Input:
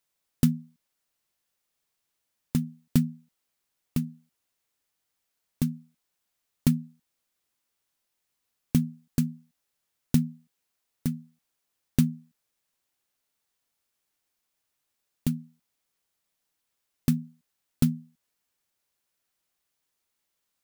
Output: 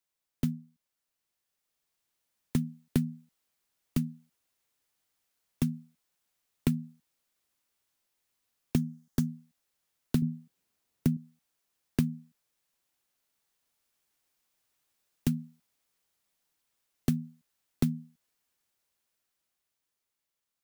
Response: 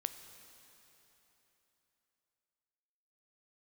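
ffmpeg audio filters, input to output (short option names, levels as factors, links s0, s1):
-filter_complex "[0:a]asettb=1/sr,asplit=3[s0][s1][s2];[s0]atrim=end=8.764[s3];[s1]atrim=start=8.76:end=9.27,asetpts=PTS-STARTPTS,afade=t=in:d=0.004:c=qsin,afade=t=out:st=0.506:d=0.004:c=qsin,equalizer=f=2500:t=o:w=0.33:g=-9,equalizer=f=4000:t=o:w=0.33:g=-3,equalizer=f=6300:t=o:w=0.33:g=6[s4];[s2]atrim=start=9.266[s5];[s3][s4]acrossfade=d=0.004:c1=hsin:c2=qsin[s6];[s6][s5]acrossfade=d=0.004:c1=qsin:c2=hsin,acrossover=split=150|690|4000[s7][s8][s9][s10];[s10]aeval=exprs='(mod(29.9*val(0)+1,2)-1)/29.9':c=same[s11];[s7][s8][s9][s11]amix=inputs=4:normalize=0,dynaudnorm=f=310:g=11:m=2.99,asettb=1/sr,asplit=3[s12][s13][s14];[s12]atrim=end=10.224[s15];[s13]atrim=start=10.22:end=11.17,asetpts=PTS-STARTPTS,afade=t=in:d=0.004:c=qsin,afade=t=out:st=0.946:d=0.004:c=qsin,equalizer=f=160:t=o:w=3:g=8.5[s16];[s14]atrim=start=11.166[s17];[s15][s16]acrossfade=d=0.004:c1=hsin:c2=qsin[s18];[s18][s17]acrossfade=d=0.004:c1=qsin:c2=hsin,acompressor=threshold=0.158:ratio=4,volume=0.473"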